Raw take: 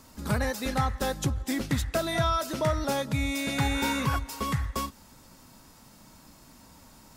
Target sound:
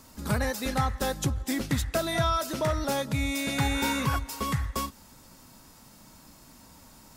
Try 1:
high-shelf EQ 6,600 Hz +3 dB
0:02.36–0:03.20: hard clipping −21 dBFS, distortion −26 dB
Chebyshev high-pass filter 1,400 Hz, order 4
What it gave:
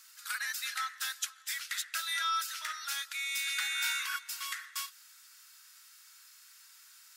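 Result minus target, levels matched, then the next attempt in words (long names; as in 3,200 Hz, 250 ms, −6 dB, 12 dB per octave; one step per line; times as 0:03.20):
1,000 Hz band −2.5 dB
high-shelf EQ 6,600 Hz +3 dB
0:02.36–0:03.20: hard clipping −21 dBFS, distortion −26 dB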